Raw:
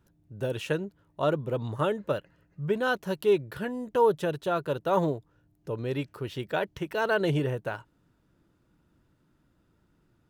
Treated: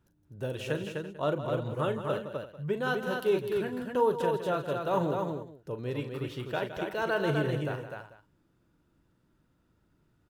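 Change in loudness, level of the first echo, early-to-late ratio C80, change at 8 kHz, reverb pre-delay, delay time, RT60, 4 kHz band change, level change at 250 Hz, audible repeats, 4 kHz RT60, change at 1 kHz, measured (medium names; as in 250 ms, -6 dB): -2.5 dB, -10.5 dB, no reverb, no reading, no reverb, 40 ms, no reverb, -2.0 dB, -2.0 dB, 5, no reverb, -2.0 dB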